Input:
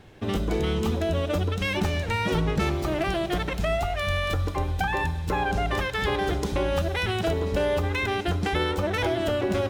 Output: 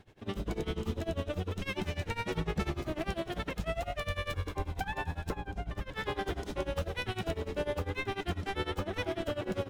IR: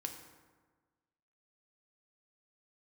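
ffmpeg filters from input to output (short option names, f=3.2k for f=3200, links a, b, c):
-filter_complex "[0:a]asplit=2[a][b];[b]asplit=7[c][d][e][f][g][h][i];[c]adelay=172,afreqshift=-92,volume=-11dB[j];[d]adelay=344,afreqshift=-184,volume=-15.7dB[k];[e]adelay=516,afreqshift=-276,volume=-20.5dB[l];[f]adelay=688,afreqshift=-368,volume=-25.2dB[m];[g]adelay=860,afreqshift=-460,volume=-29.9dB[n];[h]adelay=1032,afreqshift=-552,volume=-34.7dB[o];[i]adelay=1204,afreqshift=-644,volume=-39.4dB[p];[j][k][l][m][n][o][p]amix=inputs=7:normalize=0[q];[a][q]amix=inputs=2:normalize=0,asettb=1/sr,asplit=3[r][s][t];[r]atrim=end=5.354[u];[s]atrim=start=5.35:end=5.94,asetpts=PTS-STARTPTS,afade=t=in:d=0.004:c=qsin,afade=t=out:st=0.586:d=0.004:c=qsin,acrossover=split=270[v][w];[w]acompressor=threshold=-32dB:ratio=10[x];[v][x]amix=inputs=2:normalize=0[y];[t]atrim=start=5.936[z];[u][y]acrossfade=d=0.004:c1=hsin:c2=qsin[aa];[aa][z]acrossfade=d=0.004:c1=qsin:c2=hsin,tremolo=f=10:d=0.91,volume=-6dB"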